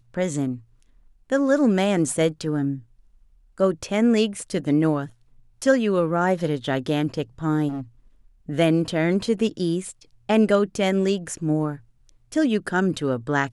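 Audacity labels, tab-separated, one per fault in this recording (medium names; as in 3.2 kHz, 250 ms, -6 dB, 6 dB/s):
7.680000	7.810000	clipped -26.5 dBFS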